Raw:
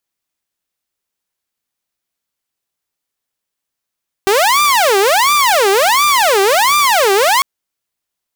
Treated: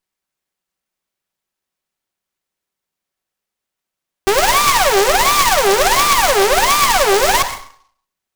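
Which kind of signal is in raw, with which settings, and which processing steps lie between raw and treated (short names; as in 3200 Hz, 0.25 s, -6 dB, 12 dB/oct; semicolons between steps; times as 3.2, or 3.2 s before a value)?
siren wail 387–1190 Hz 1.4/s saw -6.5 dBFS 3.15 s
minimum comb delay 5.3 ms; plate-style reverb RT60 0.56 s, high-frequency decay 0.75×, pre-delay 80 ms, DRR 9.5 dB; noise-modulated delay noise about 3800 Hz, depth 0.054 ms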